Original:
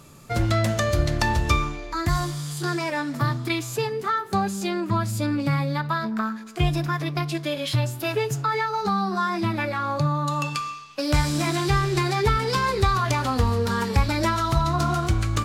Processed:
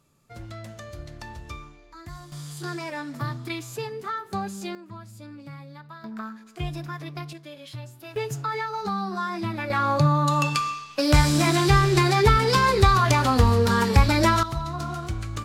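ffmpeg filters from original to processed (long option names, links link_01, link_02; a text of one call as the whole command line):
ffmpeg -i in.wav -af "asetnsamples=nb_out_samples=441:pad=0,asendcmd='2.32 volume volume -6.5dB;4.75 volume volume -18dB;6.04 volume volume -9dB;7.33 volume volume -15dB;8.16 volume volume -4.5dB;9.7 volume volume 3.5dB;14.43 volume volume -8dB',volume=-17.5dB" out.wav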